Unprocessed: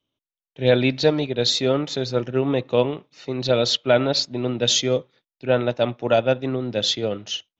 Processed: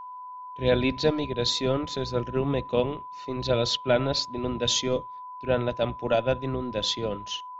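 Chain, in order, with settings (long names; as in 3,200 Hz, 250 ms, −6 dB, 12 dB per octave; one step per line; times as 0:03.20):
sub-octave generator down 1 octave, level −6 dB
steady tone 1,000 Hz −32 dBFS
level −5.5 dB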